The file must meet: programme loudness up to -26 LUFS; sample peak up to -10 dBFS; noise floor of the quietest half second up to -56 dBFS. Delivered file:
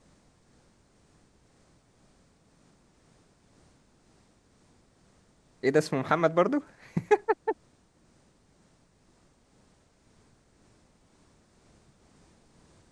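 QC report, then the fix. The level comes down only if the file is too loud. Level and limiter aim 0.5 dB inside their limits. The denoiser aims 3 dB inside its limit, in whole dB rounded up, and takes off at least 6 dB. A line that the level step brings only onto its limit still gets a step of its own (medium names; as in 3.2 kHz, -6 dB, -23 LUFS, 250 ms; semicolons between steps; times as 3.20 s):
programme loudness -27.5 LUFS: pass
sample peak -8.5 dBFS: fail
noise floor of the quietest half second -64 dBFS: pass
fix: peak limiter -10.5 dBFS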